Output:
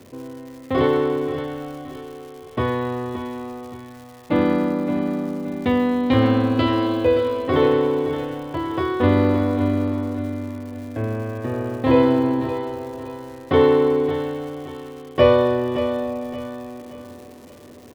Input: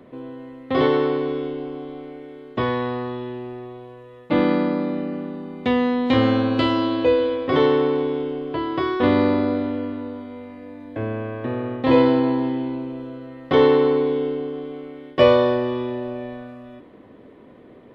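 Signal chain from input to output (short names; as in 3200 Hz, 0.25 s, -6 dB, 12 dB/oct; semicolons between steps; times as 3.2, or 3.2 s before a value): high shelf 4100 Hz -7.5 dB; feedback echo 0.572 s, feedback 39%, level -10 dB; crackle 330/s -37 dBFS; bell 89 Hz +14 dB 0.34 oct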